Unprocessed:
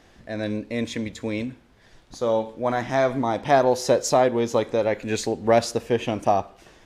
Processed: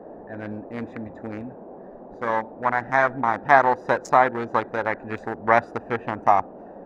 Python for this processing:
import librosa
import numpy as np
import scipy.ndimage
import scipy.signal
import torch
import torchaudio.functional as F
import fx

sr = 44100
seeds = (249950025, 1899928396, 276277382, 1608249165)

y = fx.wiener(x, sr, points=41)
y = fx.band_shelf(y, sr, hz=1300.0, db=15.5, octaves=1.7)
y = fx.dmg_noise_band(y, sr, seeds[0], low_hz=180.0, high_hz=750.0, level_db=-37.0)
y = y * librosa.db_to_amplitude(-5.0)